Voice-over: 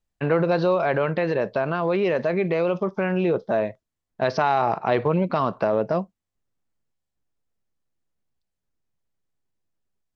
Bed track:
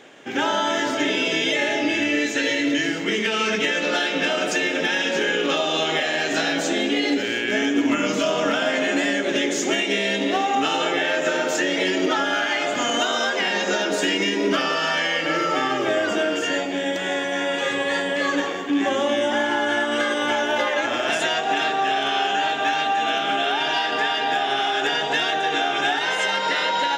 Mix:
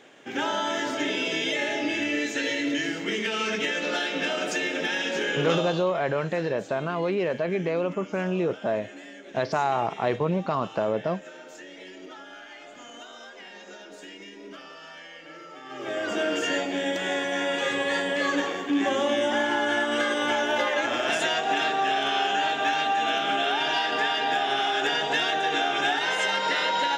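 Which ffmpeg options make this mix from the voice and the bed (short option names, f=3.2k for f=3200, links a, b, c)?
-filter_complex "[0:a]adelay=5150,volume=-4dB[a];[1:a]volume=13.5dB,afade=t=out:st=5.52:d=0.33:silence=0.149624,afade=t=in:st=15.64:d=0.7:silence=0.112202[b];[a][b]amix=inputs=2:normalize=0"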